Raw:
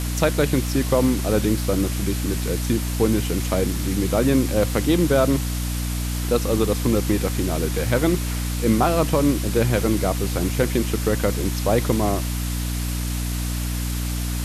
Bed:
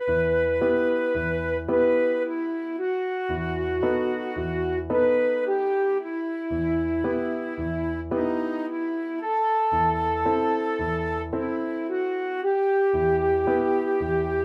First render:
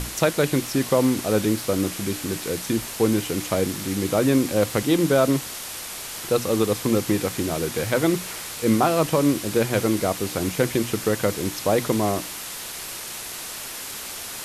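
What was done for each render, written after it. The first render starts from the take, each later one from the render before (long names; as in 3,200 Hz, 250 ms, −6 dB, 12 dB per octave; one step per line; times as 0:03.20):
mains-hum notches 60/120/180/240/300 Hz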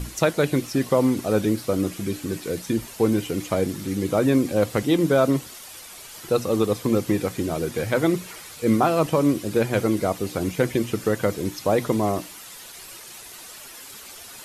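broadband denoise 10 dB, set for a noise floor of −34 dBFS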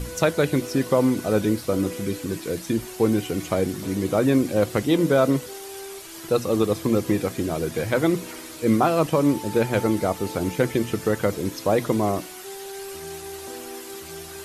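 mix in bed −15.5 dB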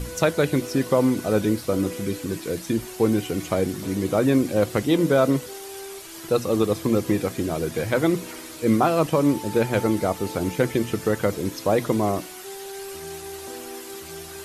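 no processing that can be heard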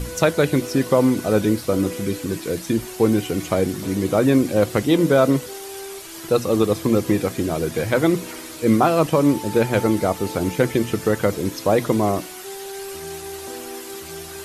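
level +3 dB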